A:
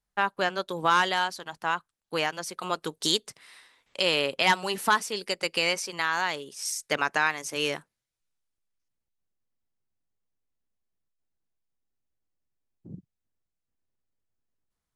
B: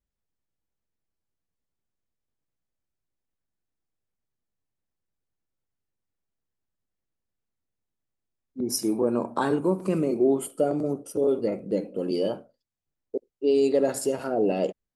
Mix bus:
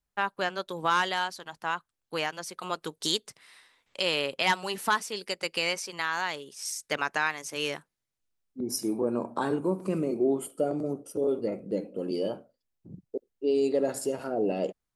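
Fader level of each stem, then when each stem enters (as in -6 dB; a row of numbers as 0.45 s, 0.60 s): -3.0 dB, -4.0 dB; 0.00 s, 0.00 s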